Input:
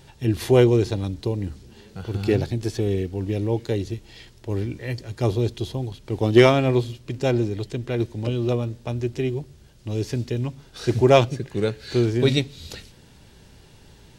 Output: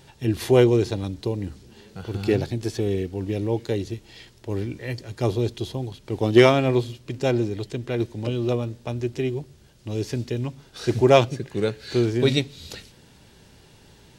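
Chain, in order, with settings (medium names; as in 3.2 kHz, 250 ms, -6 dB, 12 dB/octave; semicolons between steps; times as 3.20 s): bass shelf 76 Hz -8 dB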